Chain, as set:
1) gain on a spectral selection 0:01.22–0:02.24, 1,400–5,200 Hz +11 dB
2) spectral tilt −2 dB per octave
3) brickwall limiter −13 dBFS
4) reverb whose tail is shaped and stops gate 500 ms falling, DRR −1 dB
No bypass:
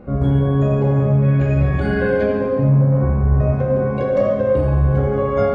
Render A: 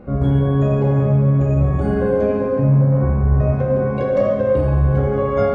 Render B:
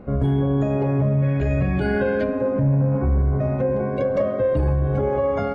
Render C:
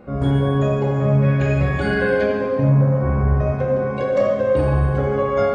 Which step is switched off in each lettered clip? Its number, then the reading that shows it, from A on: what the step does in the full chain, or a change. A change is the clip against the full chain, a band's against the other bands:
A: 1, 2 kHz band −5.0 dB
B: 4, change in crest factor −3.0 dB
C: 2, 2 kHz band +4.5 dB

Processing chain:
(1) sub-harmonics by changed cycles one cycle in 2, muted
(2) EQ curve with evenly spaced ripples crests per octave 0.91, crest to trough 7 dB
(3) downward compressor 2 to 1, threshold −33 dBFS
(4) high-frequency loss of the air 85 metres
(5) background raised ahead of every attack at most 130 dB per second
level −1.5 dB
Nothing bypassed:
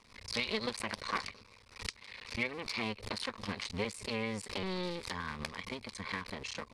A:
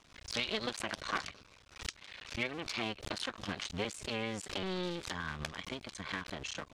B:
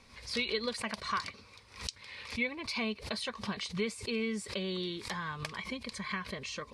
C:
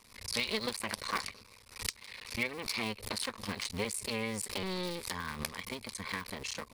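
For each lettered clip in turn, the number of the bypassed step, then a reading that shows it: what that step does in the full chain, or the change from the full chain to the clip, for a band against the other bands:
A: 2, 8 kHz band +2.0 dB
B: 1, change in crest factor −3.0 dB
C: 4, 8 kHz band +7.5 dB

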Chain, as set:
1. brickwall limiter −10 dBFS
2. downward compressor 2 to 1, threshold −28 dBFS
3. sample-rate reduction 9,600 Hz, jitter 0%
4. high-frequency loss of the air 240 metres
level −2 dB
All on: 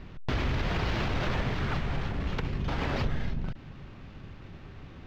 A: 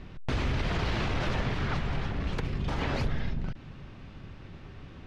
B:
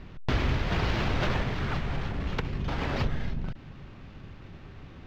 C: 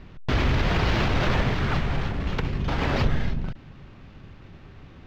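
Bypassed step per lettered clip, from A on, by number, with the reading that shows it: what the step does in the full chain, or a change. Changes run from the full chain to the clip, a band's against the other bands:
3, distortion level −5 dB
1, change in crest factor +1.5 dB
2, average gain reduction 3.5 dB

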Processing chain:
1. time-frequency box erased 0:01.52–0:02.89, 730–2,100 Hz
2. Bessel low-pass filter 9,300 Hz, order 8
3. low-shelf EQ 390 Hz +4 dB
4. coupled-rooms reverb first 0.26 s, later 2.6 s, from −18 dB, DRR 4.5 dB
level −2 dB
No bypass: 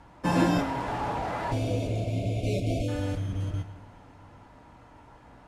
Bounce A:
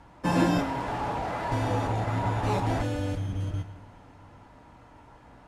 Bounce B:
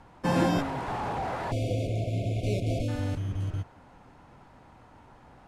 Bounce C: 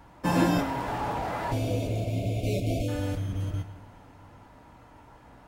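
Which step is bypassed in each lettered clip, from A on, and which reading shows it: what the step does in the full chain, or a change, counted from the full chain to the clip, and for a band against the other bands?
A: 1, 1 kHz band +2.5 dB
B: 4, change in momentary loudness spread −1 LU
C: 2, 8 kHz band +2.0 dB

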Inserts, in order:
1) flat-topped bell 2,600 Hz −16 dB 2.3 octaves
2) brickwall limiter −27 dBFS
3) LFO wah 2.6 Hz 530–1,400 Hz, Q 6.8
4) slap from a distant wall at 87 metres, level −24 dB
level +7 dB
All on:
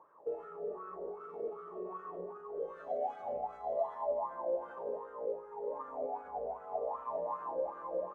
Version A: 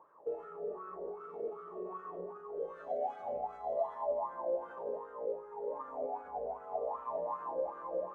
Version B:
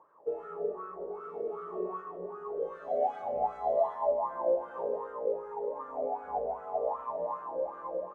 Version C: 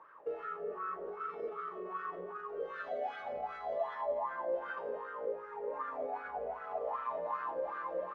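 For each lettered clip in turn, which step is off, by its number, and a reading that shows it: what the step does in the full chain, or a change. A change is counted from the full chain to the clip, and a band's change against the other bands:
4, echo-to-direct ratio −25.5 dB to none audible
2, average gain reduction 4.5 dB
1, 2 kHz band +15.0 dB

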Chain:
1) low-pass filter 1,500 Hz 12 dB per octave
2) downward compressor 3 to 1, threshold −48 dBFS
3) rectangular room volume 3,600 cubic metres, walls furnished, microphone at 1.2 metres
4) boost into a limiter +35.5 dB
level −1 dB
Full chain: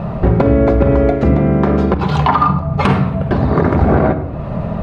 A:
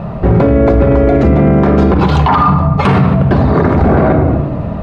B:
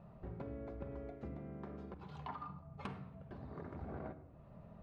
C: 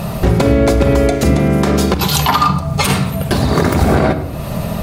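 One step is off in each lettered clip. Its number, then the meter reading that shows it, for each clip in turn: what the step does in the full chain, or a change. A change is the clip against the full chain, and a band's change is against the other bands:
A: 2, average gain reduction 10.5 dB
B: 4, change in crest factor +7.0 dB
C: 1, 4 kHz band +13.0 dB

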